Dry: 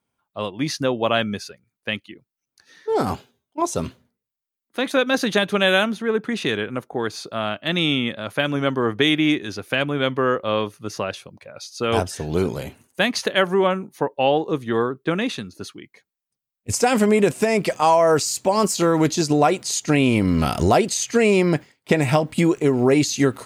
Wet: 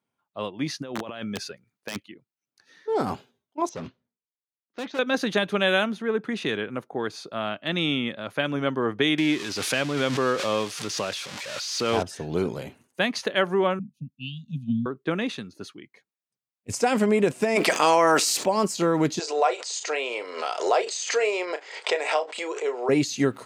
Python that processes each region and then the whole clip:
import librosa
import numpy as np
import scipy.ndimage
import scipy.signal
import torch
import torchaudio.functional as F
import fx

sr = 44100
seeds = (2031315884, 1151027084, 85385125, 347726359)

y = fx.chain(x, sr, fx.over_compress(threshold_db=-29.0, ratio=-1.0),
    fx.overflow_wrap(gain_db=17.0), at=(0.82, 2.03))
y = fx.chain(y, sr, fx.steep_lowpass(hz=6200.0, slope=48),
    fx.overload_stage(gain_db=25.0),
    fx.upward_expand(threshold_db=-50.0, expansion=1.5), at=(3.69, 4.99))
y = fx.chain(y, sr, fx.crossing_spikes(level_db=-14.0),
    fx.lowpass(hz=5400.0, slope=12),
    fx.pre_swell(db_per_s=33.0), at=(9.18, 12.03))
y = fx.chain(y, sr, fx.brickwall_bandstop(low_hz=260.0, high_hz=2400.0),
    fx.tilt_shelf(db=7.0, hz=730.0),
    fx.band_widen(depth_pct=100), at=(13.79, 14.86))
y = fx.spec_clip(y, sr, under_db=14, at=(17.55, 18.44), fade=0.02)
y = fx.highpass(y, sr, hz=290.0, slope=12, at=(17.55, 18.44), fade=0.02)
y = fx.env_flatten(y, sr, amount_pct=70, at=(17.55, 18.44), fade=0.02)
y = fx.chain(y, sr, fx.cheby1_bandpass(low_hz=440.0, high_hz=8100.0, order=4),
    fx.doubler(ms=33.0, db=-11),
    fx.pre_swell(db_per_s=88.0), at=(19.19, 22.89))
y = scipy.signal.sosfilt(scipy.signal.butter(2, 120.0, 'highpass', fs=sr, output='sos'), y)
y = fx.high_shelf(y, sr, hz=7900.0, db=-9.0)
y = y * librosa.db_to_amplitude(-4.0)